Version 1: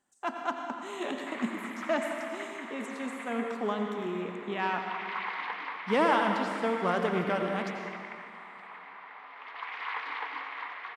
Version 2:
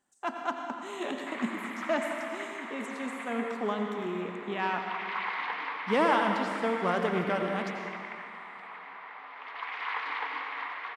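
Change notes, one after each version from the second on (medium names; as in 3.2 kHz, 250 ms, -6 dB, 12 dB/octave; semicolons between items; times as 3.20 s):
background: send +7.5 dB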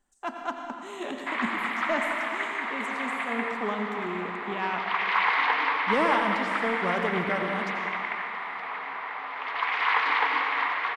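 background +10.0 dB; master: remove high-pass 120 Hz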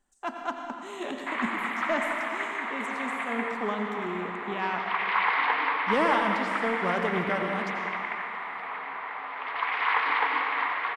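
background: add distance through air 160 m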